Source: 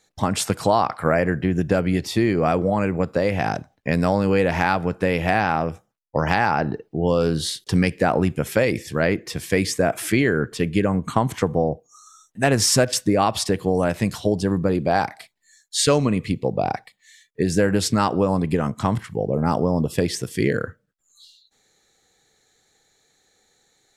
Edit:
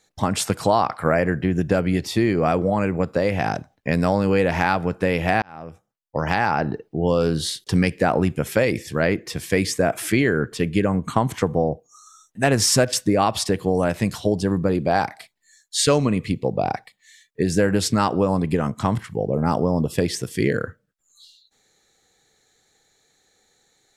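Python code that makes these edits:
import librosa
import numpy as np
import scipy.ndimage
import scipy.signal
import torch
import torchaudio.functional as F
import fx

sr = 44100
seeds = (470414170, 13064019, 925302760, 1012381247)

y = fx.edit(x, sr, fx.fade_in_span(start_s=5.42, length_s=1.45, curve='qsin'), tone=tone)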